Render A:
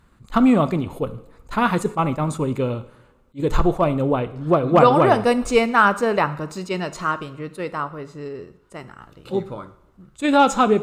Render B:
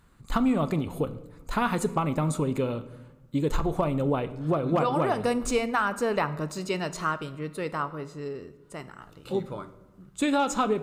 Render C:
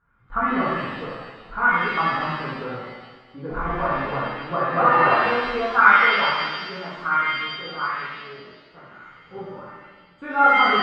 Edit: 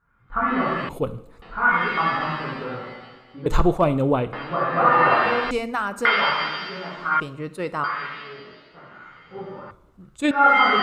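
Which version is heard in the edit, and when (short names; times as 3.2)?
C
0.89–1.42 from A
3.46–4.33 from A
5.51–6.05 from B
7.2–7.84 from A
9.71–10.31 from A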